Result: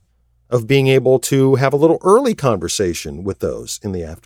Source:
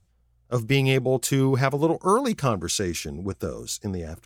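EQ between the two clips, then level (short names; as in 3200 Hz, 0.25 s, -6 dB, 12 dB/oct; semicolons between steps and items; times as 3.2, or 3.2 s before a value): dynamic EQ 450 Hz, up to +7 dB, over -37 dBFS, Q 1.4; +5.0 dB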